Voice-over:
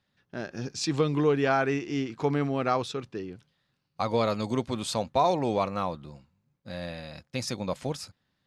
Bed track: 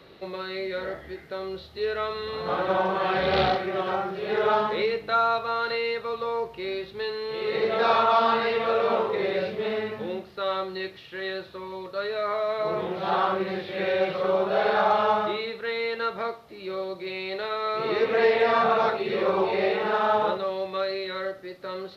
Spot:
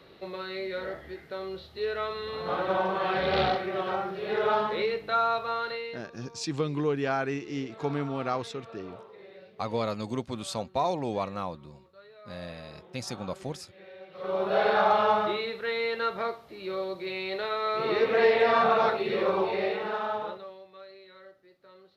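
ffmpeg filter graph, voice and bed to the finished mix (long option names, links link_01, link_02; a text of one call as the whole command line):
ffmpeg -i stem1.wav -i stem2.wav -filter_complex "[0:a]adelay=5600,volume=-4dB[link_01];[1:a]volume=19dB,afade=type=out:start_time=5.52:duration=0.57:silence=0.1,afade=type=in:start_time=14.11:duration=0.44:silence=0.0794328,afade=type=out:start_time=19.04:duration=1.6:silence=0.112202[link_02];[link_01][link_02]amix=inputs=2:normalize=0" out.wav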